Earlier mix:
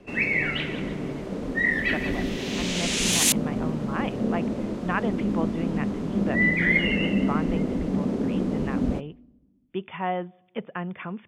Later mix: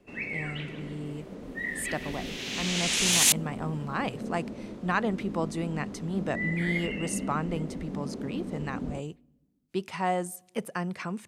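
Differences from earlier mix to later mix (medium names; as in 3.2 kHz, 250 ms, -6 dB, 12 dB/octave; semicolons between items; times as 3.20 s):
speech: remove brick-wall FIR low-pass 3.6 kHz; first sound -10.5 dB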